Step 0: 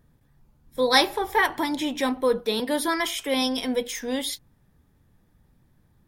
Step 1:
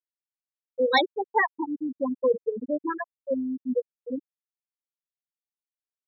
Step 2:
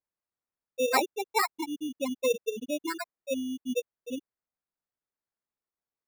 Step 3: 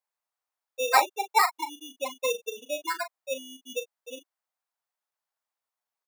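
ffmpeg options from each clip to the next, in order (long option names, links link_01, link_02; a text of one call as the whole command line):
ffmpeg -i in.wav -af "afftfilt=real='re*gte(hypot(re,im),0.398)':imag='im*gte(hypot(re,im),0.398)':win_size=1024:overlap=0.75" out.wav
ffmpeg -i in.wav -af "acrusher=samples=14:mix=1:aa=0.000001,volume=-4dB" out.wav
ffmpeg -i in.wav -filter_complex "[0:a]highpass=frequency=770:width_type=q:width=1.6,asplit=2[link_01][link_02];[link_02]adelay=38,volume=-10.5dB[link_03];[link_01][link_03]amix=inputs=2:normalize=0,volume=2.5dB" out.wav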